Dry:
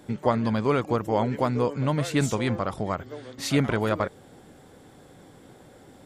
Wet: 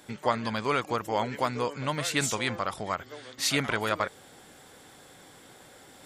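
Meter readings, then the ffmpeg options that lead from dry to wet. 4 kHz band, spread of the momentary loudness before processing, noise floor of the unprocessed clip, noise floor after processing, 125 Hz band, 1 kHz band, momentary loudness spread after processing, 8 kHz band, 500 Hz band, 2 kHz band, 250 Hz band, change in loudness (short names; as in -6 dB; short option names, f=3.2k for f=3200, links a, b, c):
+4.5 dB, 7 LU, -52 dBFS, -53 dBFS, -9.5 dB, -0.5 dB, 7 LU, +5.0 dB, -5.5 dB, +2.5 dB, -8.5 dB, -3.5 dB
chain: -af "tiltshelf=f=760:g=-7.5,areverse,acompressor=mode=upward:threshold=-44dB:ratio=2.5,areverse,volume=-2.5dB"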